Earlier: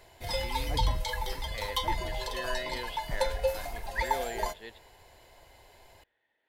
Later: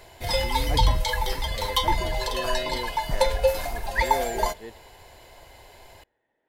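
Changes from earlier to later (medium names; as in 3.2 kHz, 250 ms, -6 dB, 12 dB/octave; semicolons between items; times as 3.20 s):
speech: add tilt shelf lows +9 dB, about 1.4 kHz; background +7.5 dB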